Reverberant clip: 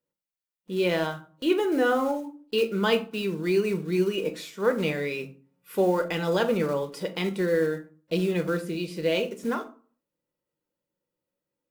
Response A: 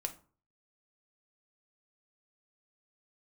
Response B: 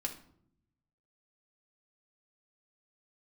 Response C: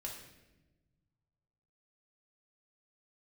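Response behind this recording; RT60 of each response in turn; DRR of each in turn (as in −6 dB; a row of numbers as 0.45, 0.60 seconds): A; 0.40, 0.70, 1.1 seconds; 5.5, 1.5, −2.0 decibels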